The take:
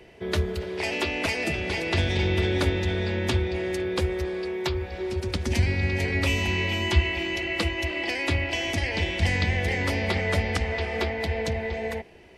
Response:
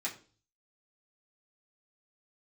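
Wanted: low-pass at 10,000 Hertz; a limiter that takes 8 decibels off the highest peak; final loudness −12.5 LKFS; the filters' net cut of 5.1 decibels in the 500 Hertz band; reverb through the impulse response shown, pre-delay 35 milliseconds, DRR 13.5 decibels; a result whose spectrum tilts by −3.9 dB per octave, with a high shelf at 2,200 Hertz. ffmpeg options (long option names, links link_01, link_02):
-filter_complex "[0:a]lowpass=10000,equalizer=frequency=500:width_type=o:gain=-8,highshelf=frequency=2200:gain=7,alimiter=limit=-16.5dB:level=0:latency=1,asplit=2[link_01][link_02];[1:a]atrim=start_sample=2205,adelay=35[link_03];[link_02][link_03]afir=irnorm=-1:irlink=0,volume=-16.5dB[link_04];[link_01][link_04]amix=inputs=2:normalize=0,volume=13.5dB"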